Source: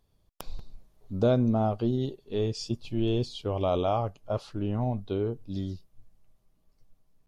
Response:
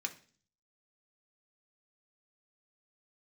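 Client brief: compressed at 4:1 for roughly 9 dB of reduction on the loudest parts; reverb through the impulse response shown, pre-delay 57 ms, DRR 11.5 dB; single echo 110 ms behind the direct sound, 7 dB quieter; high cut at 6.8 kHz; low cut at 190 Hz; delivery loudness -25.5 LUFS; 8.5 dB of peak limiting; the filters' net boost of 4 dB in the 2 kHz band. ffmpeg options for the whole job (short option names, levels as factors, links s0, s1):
-filter_complex "[0:a]highpass=190,lowpass=6800,equalizer=f=2000:t=o:g=6,acompressor=threshold=0.0316:ratio=4,alimiter=level_in=1.19:limit=0.0631:level=0:latency=1,volume=0.841,aecho=1:1:110:0.447,asplit=2[s0][s1];[1:a]atrim=start_sample=2205,adelay=57[s2];[s1][s2]afir=irnorm=-1:irlink=0,volume=0.251[s3];[s0][s3]amix=inputs=2:normalize=0,volume=3.55"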